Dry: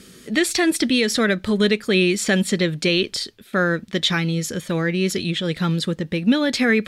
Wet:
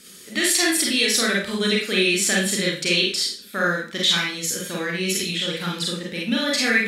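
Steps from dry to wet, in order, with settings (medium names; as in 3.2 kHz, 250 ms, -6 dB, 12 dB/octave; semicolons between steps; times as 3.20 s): tilt EQ +2.5 dB/octave; Schroeder reverb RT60 0.4 s, combs from 31 ms, DRR -3.5 dB; trim -6.5 dB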